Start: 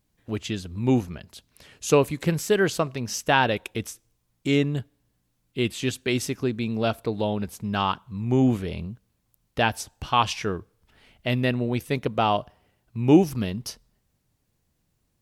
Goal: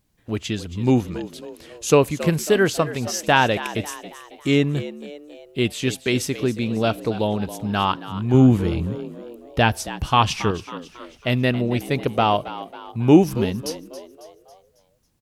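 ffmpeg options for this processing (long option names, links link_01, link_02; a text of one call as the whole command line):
ffmpeg -i in.wav -filter_complex "[0:a]asettb=1/sr,asplit=3[link_01][link_02][link_03];[link_01]atrim=end=8.344[link_04];[link_02]atrim=start=8.34:end=10.51,asetpts=PTS-STARTPTS,afade=type=in:duration=0.004:curve=qsin,afade=type=out:start_time=2.166:duration=0.004:curve=qsin,lowshelf=frequency=190:gain=7.5[link_05];[link_03]atrim=start=10.506[link_06];[link_04][link_05]acrossfade=duration=0.004:curve1=hsin:curve2=qsin[link_07];[link_07][link_06]acrossfade=duration=0.004:curve1=qsin:curve2=hsin,asplit=6[link_08][link_09][link_10][link_11][link_12][link_13];[link_09]adelay=274,afreqshift=76,volume=-14.5dB[link_14];[link_10]adelay=548,afreqshift=152,volume=-20.7dB[link_15];[link_11]adelay=822,afreqshift=228,volume=-26.9dB[link_16];[link_12]adelay=1096,afreqshift=304,volume=-33.1dB[link_17];[link_13]adelay=1370,afreqshift=380,volume=-39.3dB[link_18];[link_08][link_14][link_15][link_16][link_17][link_18]amix=inputs=6:normalize=0,volume=3.5dB" out.wav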